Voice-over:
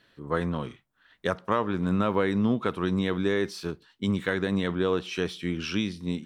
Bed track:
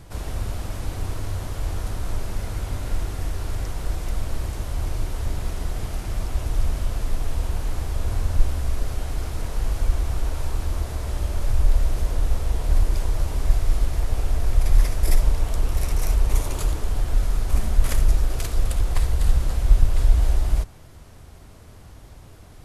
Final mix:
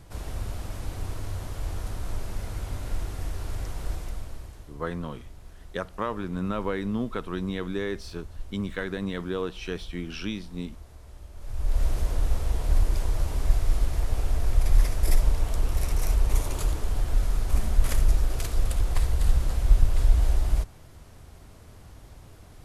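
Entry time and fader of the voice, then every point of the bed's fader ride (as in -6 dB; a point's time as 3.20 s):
4.50 s, -4.5 dB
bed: 3.93 s -5 dB
4.77 s -19.5 dB
11.33 s -19.5 dB
11.83 s -3 dB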